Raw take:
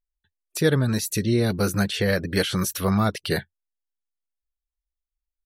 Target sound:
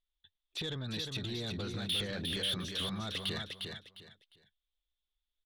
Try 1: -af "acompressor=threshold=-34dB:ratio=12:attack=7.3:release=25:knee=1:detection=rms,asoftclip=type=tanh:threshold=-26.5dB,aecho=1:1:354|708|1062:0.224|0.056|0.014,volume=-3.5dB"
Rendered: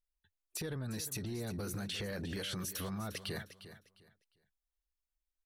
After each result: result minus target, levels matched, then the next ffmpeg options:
4,000 Hz band −6.0 dB; echo-to-direct −8 dB
-af "acompressor=threshold=-34dB:ratio=12:attack=7.3:release=25:knee=1:detection=rms,lowpass=frequency=3500:width_type=q:width=8.8,asoftclip=type=tanh:threshold=-26.5dB,aecho=1:1:354|708|1062:0.224|0.056|0.014,volume=-3.5dB"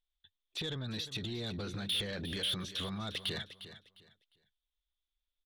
echo-to-direct −8 dB
-af "acompressor=threshold=-34dB:ratio=12:attack=7.3:release=25:knee=1:detection=rms,lowpass=frequency=3500:width_type=q:width=8.8,asoftclip=type=tanh:threshold=-26.5dB,aecho=1:1:354|708|1062:0.562|0.141|0.0351,volume=-3.5dB"

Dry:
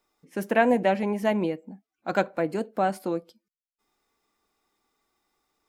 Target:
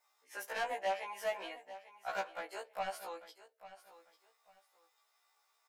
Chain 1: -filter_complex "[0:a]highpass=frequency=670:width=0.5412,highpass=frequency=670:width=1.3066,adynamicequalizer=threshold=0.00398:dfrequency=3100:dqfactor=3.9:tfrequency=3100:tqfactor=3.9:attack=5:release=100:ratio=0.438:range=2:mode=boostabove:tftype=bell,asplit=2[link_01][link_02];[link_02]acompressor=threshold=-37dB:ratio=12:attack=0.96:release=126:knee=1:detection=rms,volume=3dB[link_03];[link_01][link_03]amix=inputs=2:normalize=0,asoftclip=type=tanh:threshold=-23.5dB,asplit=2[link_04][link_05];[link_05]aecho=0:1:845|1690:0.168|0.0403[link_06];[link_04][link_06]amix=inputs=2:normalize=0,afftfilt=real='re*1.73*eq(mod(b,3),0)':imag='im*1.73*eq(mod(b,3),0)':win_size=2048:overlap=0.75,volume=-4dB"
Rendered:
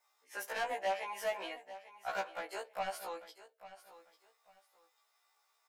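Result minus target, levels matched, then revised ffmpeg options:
downward compressor: peak gain reduction −8.5 dB
-filter_complex "[0:a]highpass=frequency=670:width=0.5412,highpass=frequency=670:width=1.3066,adynamicequalizer=threshold=0.00398:dfrequency=3100:dqfactor=3.9:tfrequency=3100:tqfactor=3.9:attack=5:release=100:ratio=0.438:range=2:mode=boostabove:tftype=bell,asplit=2[link_01][link_02];[link_02]acompressor=threshold=-46.5dB:ratio=12:attack=0.96:release=126:knee=1:detection=rms,volume=3dB[link_03];[link_01][link_03]amix=inputs=2:normalize=0,asoftclip=type=tanh:threshold=-23.5dB,asplit=2[link_04][link_05];[link_05]aecho=0:1:845|1690:0.168|0.0403[link_06];[link_04][link_06]amix=inputs=2:normalize=0,afftfilt=real='re*1.73*eq(mod(b,3),0)':imag='im*1.73*eq(mod(b,3),0)':win_size=2048:overlap=0.75,volume=-4dB"

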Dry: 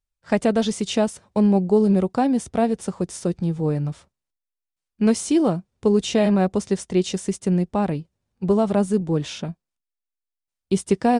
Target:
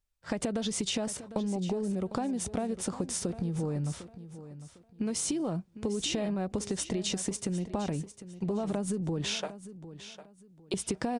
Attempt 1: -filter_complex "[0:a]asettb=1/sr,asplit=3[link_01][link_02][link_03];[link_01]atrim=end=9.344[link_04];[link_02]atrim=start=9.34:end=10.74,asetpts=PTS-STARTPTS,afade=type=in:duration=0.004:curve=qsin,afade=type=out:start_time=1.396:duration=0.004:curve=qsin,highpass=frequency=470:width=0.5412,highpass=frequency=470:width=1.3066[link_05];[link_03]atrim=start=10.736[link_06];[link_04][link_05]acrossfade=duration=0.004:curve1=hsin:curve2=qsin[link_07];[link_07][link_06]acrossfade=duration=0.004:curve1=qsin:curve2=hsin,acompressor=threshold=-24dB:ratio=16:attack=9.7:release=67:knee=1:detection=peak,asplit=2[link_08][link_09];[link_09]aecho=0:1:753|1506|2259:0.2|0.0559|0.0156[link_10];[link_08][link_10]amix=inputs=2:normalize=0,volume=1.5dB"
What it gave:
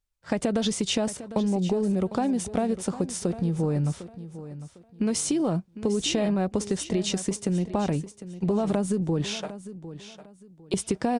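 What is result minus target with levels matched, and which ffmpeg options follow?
downward compressor: peak gain reduction −7 dB
-filter_complex "[0:a]asettb=1/sr,asplit=3[link_01][link_02][link_03];[link_01]atrim=end=9.344[link_04];[link_02]atrim=start=9.34:end=10.74,asetpts=PTS-STARTPTS,afade=type=in:duration=0.004:curve=qsin,afade=type=out:start_time=1.396:duration=0.004:curve=qsin,highpass=frequency=470:width=0.5412,highpass=frequency=470:width=1.3066[link_05];[link_03]atrim=start=10.736[link_06];[link_04][link_05]acrossfade=duration=0.004:curve1=hsin:curve2=qsin[link_07];[link_07][link_06]acrossfade=duration=0.004:curve1=qsin:curve2=hsin,acompressor=threshold=-31.5dB:ratio=16:attack=9.7:release=67:knee=1:detection=peak,asplit=2[link_08][link_09];[link_09]aecho=0:1:753|1506|2259:0.2|0.0559|0.0156[link_10];[link_08][link_10]amix=inputs=2:normalize=0,volume=1.5dB"

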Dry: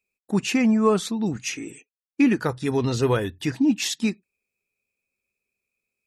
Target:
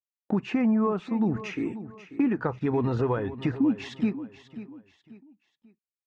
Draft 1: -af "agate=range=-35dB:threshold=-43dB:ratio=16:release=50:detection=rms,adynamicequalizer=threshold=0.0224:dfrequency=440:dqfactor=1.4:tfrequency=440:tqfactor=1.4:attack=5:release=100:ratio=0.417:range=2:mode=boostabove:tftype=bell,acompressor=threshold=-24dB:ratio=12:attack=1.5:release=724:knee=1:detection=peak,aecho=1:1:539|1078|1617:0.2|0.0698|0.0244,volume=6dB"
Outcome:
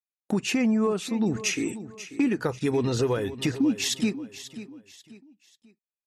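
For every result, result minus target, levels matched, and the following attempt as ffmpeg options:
2,000 Hz band +4.5 dB; 1,000 Hz band −3.5 dB
-af "agate=range=-35dB:threshold=-43dB:ratio=16:release=50:detection=rms,adynamicequalizer=threshold=0.0224:dfrequency=440:dqfactor=1.4:tfrequency=440:tqfactor=1.4:attack=5:release=100:ratio=0.417:range=2:mode=boostabove:tftype=bell,acompressor=threshold=-24dB:ratio=12:attack=1.5:release=724:knee=1:detection=peak,lowpass=1600,aecho=1:1:539|1078|1617:0.2|0.0698|0.0244,volume=6dB"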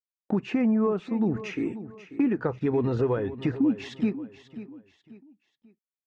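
1,000 Hz band −3.5 dB
-af "agate=range=-35dB:threshold=-43dB:ratio=16:release=50:detection=rms,adynamicequalizer=threshold=0.0224:dfrequency=960:dqfactor=1.4:tfrequency=960:tqfactor=1.4:attack=5:release=100:ratio=0.417:range=2:mode=boostabove:tftype=bell,acompressor=threshold=-24dB:ratio=12:attack=1.5:release=724:knee=1:detection=peak,lowpass=1600,aecho=1:1:539|1078|1617:0.2|0.0698|0.0244,volume=6dB"

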